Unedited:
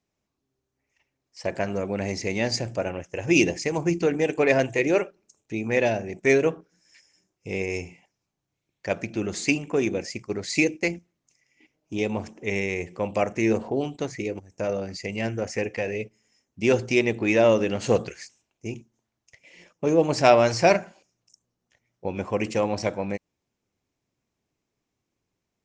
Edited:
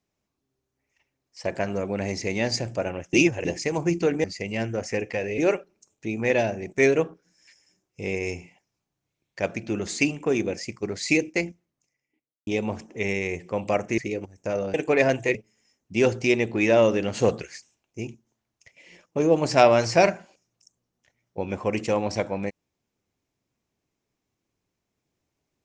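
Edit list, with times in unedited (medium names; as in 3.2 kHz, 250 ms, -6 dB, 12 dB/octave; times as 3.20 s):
3.13–3.45 s: reverse
4.24–4.85 s: swap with 14.88–16.02 s
10.82–11.94 s: studio fade out
13.45–14.12 s: delete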